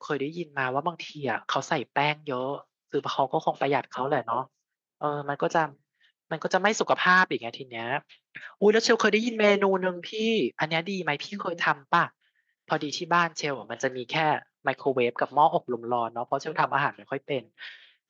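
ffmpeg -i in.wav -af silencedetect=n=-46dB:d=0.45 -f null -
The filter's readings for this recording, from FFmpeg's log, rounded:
silence_start: 4.46
silence_end: 5.01 | silence_duration: 0.55
silence_start: 5.73
silence_end: 6.31 | silence_duration: 0.58
silence_start: 12.10
silence_end: 12.68 | silence_duration: 0.58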